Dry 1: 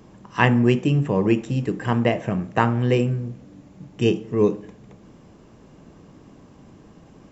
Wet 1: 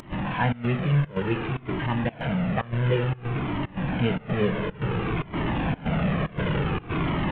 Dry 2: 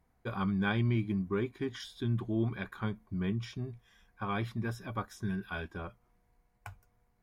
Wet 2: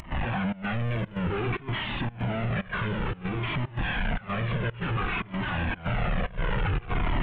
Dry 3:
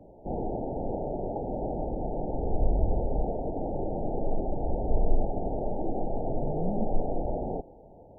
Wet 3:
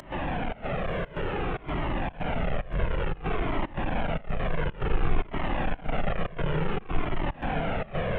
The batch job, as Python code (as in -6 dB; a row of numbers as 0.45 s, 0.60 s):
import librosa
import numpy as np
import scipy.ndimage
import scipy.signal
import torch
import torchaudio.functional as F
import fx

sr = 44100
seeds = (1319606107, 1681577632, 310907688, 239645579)

y = fx.delta_mod(x, sr, bps=16000, step_db=-17.0)
y = fx.rider(y, sr, range_db=10, speed_s=2.0)
y = fx.peak_eq(y, sr, hz=160.0, db=7.5, octaves=0.53)
y = fx.echo_diffused(y, sr, ms=1040, feedback_pct=58, wet_db=-11)
y = fx.volume_shaper(y, sr, bpm=115, per_beat=1, depth_db=-21, release_ms=117.0, shape='slow start')
y = fx.comb_cascade(y, sr, direction='falling', hz=0.56)
y = F.gain(torch.from_numpy(y), -2.0).numpy()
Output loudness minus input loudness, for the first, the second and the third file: -5.5 LU, +5.0 LU, +1.0 LU